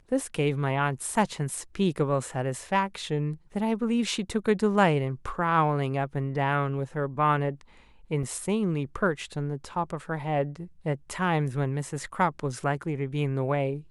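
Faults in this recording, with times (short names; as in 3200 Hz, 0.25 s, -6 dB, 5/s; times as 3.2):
8.23 gap 4.4 ms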